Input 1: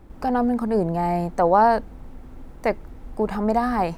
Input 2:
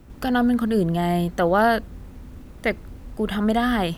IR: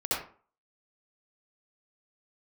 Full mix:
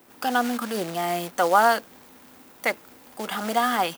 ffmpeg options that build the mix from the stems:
-filter_complex "[0:a]aemphasis=mode=production:type=riaa,aecho=1:1:5:0.65,volume=0.473[s0];[1:a]acrusher=bits=4:mode=log:mix=0:aa=0.000001,adelay=0.4,volume=1[s1];[s0][s1]amix=inputs=2:normalize=0,highpass=390"

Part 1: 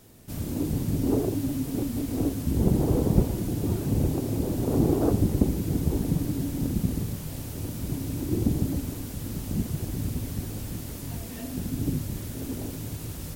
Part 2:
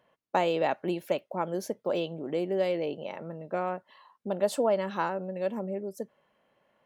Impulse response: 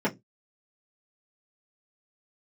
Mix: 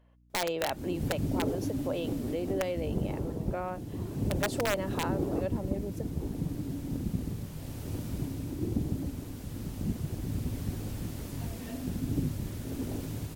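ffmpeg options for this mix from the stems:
-filter_complex "[0:a]highshelf=f=5700:g=-7,dynaudnorm=f=150:g=7:m=6.31,adelay=300,volume=0.15[s0];[1:a]aeval=exprs='(mod(7.5*val(0)+1,2)-1)/7.5':c=same,aeval=exprs='val(0)+0.00141*(sin(2*PI*60*n/s)+sin(2*PI*2*60*n/s)/2+sin(2*PI*3*60*n/s)/3+sin(2*PI*4*60*n/s)/4+sin(2*PI*5*60*n/s)/5)':c=same,volume=0.596,asplit=2[s1][s2];[s2]apad=whole_len=602305[s3];[s0][s3]sidechaincompress=threshold=0.0178:ratio=3:attack=22:release=130[s4];[s4][s1]amix=inputs=2:normalize=0"

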